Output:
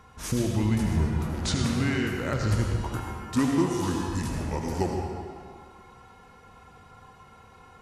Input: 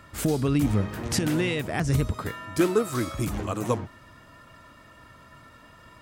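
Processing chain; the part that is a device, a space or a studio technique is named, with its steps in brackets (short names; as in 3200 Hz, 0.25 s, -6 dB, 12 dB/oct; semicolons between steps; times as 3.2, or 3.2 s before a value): slowed and reverbed (varispeed -23%; reverb RT60 2.0 s, pre-delay 70 ms, DRR 1 dB); gain -3 dB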